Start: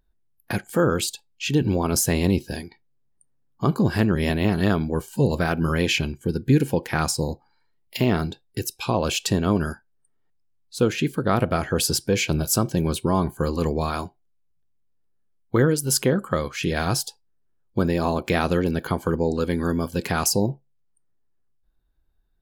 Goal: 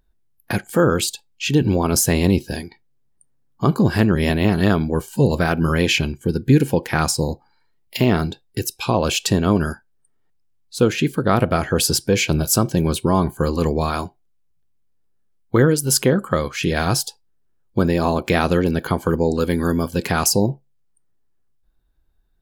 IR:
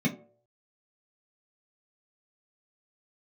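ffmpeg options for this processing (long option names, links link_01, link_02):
-filter_complex "[0:a]asettb=1/sr,asplit=3[link_01][link_02][link_03];[link_01]atrim=end=19.104[link_04];[link_02]atrim=start=19.1:end=19.83,asetpts=PTS-STARTPTS,afade=type=in:duration=0.004:curve=qsin,afade=type=out:start_time=0.726:duration=0.004:curve=qsin,equalizer=frequency=16000:width_type=o:width=0.86:gain=10[link_05];[link_03]atrim=start=19.826[link_06];[link_04][link_05]acrossfade=duration=0.004:curve1=hsin:curve2=qsin[link_07];[link_07][link_06]acrossfade=duration=0.004:curve1=qsin:curve2=hsin,volume=4dB"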